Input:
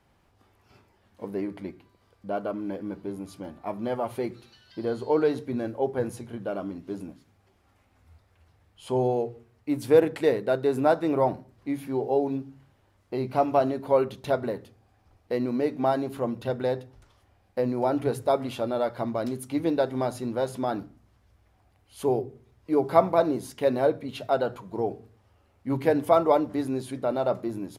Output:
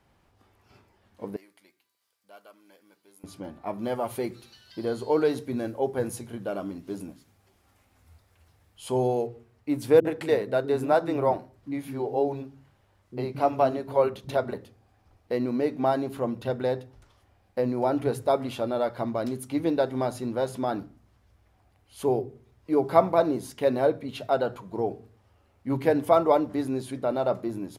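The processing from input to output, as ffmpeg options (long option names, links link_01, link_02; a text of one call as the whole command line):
ffmpeg -i in.wav -filter_complex "[0:a]asettb=1/sr,asplit=3[link_01][link_02][link_03];[link_01]atrim=end=1.364[link_04];[link_02]atrim=start=1.36:end=3.24,asetpts=PTS-STARTPTS,afade=type=in:duration=0.004:curve=qsin,afade=type=out:start_time=1.876:duration=0.004:curve=qsin,aderivative[link_05];[link_03]atrim=start=3.236[link_06];[link_04][link_05]acrossfade=duration=0.004:curve1=hsin:curve2=qsin[link_07];[link_07][link_06]acrossfade=duration=0.004:curve1=qsin:curve2=hsin,asettb=1/sr,asplit=3[link_08][link_09][link_10];[link_08]atrim=end=3.784[link_11];[link_09]atrim=start=3.78:end=9.27,asetpts=PTS-STARTPTS,afade=type=in:duration=0.004:curve=qsin,afade=type=out:start_time=5.486:duration=0.004:curve=qsin,aemphasis=mode=production:type=cd[link_12];[link_10]atrim=start=9.266[link_13];[link_11][link_12]acrossfade=duration=0.004:curve1=hsin:curve2=qsin[link_14];[link_14][link_13]acrossfade=duration=0.004:curve1=qsin:curve2=hsin,asettb=1/sr,asplit=3[link_15][link_16][link_17];[link_15]atrim=end=10.004[link_18];[link_16]atrim=start=10:end=14.54,asetpts=PTS-STARTPTS,afade=type=in:duration=0.004:curve=qsin,afade=type=out:start_time=4.536:duration=0.004:curve=qsin,acrossover=split=270[link_19][link_20];[link_20]adelay=50[link_21];[link_19][link_21]amix=inputs=2:normalize=0,atrim=end_sample=200214[link_22];[link_17]atrim=start=14.536[link_23];[link_18][link_22]acrossfade=duration=0.004:curve1=hsin:curve2=qsin[link_24];[link_24][link_23]acrossfade=duration=0.004:curve1=qsin:curve2=hsin" out.wav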